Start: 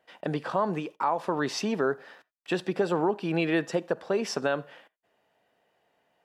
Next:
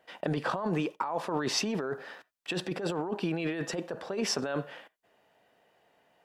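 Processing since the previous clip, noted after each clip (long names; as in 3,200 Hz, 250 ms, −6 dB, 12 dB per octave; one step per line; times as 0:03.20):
compressor whose output falls as the input rises −31 dBFS, ratio −1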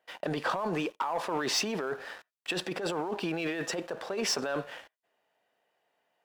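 low-shelf EQ 260 Hz −11.5 dB
leveller curve on the samples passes 2
level −4 dB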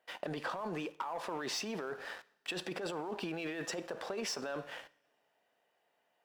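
downward compressor, threshold −35 dBFS, peak gain reduction 9.5 dB
coupled-rooms reverb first 0.71 s, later 2.4 s, from −21 dB, DRR 18 dB
level −1 dB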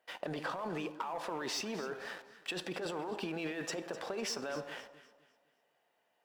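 delay that swaps between a low-pass and a high-pass 127 ms, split 1,000 Hz, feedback 58%, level −10.5 dB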